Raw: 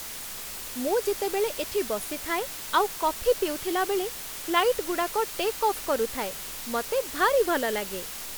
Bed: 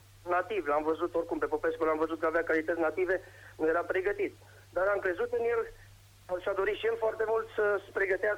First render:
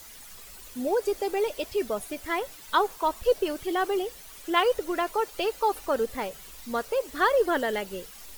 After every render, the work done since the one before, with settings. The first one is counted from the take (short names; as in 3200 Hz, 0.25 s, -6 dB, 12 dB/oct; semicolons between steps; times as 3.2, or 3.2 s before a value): denoiser 12 dB, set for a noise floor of -38 dBFS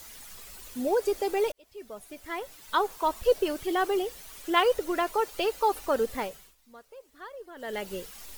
1.52–3.21 fade in; 6.2–7.91 dip -21 dB, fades 0.35 s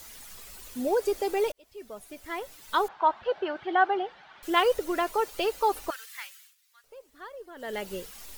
2.88–4.43 speaker cabinet 160–3300 Hz, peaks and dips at 270 Hz -8 dB, 460 Hz -9 dB, 810 Hz +10 dB, 1500 Hz +8 dB, 2600 Hz -4 dB; 5.9–6.84 HPF 1500 Hz 24 dB/oct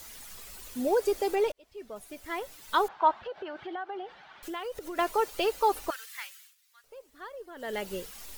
1.35–1.96 high shelf 6900 Hz -9 dB; 3.19–4.99 compressor 4:1, threshold -36 dBFS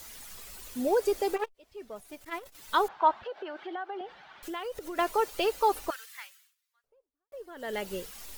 1.36–2.55 core saturation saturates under 1100 Hz; 3.24–4.01 HPF 250 Hz 24 dB/oct; 5.74–7.32 studio fade out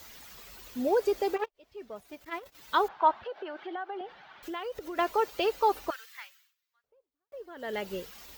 HPF 43 Hz; bell 9900 Hz -11.5 dB 0.83 oct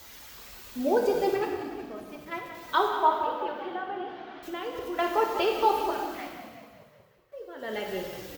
frequency-shifting echo 0.185 s, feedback 61%, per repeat -41 Hz, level -12 dB; non-linear reverb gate 0.47 s falling, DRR 1 dB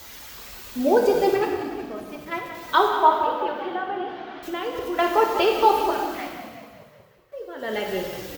gain +6 dB